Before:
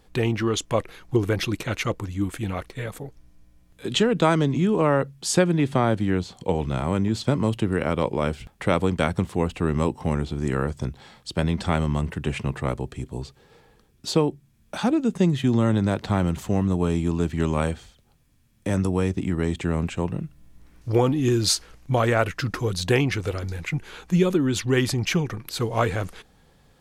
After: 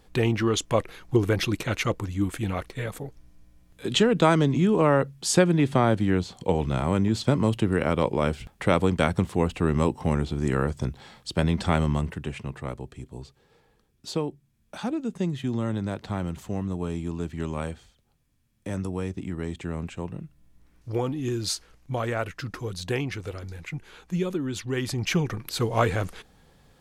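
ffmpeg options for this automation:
-af "volume=7.5dB,afade=t=out:st=11.88:d=0.45:silence=0.421697,afade=t=in:st=24.8:d=0.46:silence=0.421697"

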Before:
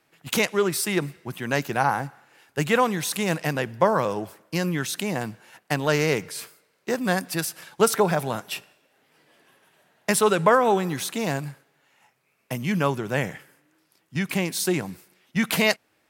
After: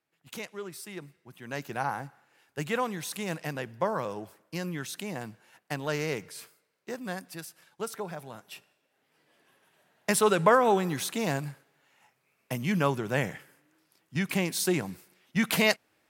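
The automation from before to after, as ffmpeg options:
-af "volume=4dB,afade=t=in:st=1.3:d=0.44:silence=0.398107,afade=t=out:st=6.4:d=1.19:silence=0.446684,afade=t=in:st=8.32:d=2.07:silence=0.223872"

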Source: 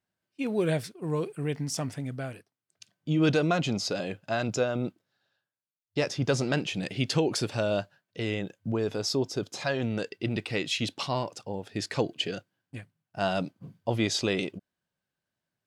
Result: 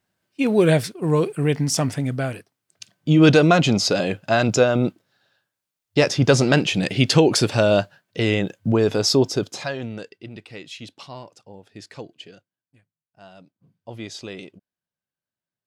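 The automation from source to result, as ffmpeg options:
-af "volume=21dB,afade=t=out:st=9.24:d=0.47:silence=0.316228,afade=t=out:st=9.71:d=0.55:silence=0.375837,afade=t=out:st=11.86:d=0.91:silence=0.316228,afade=t=in:st=13.55:d=0.45:silence=0.298538"

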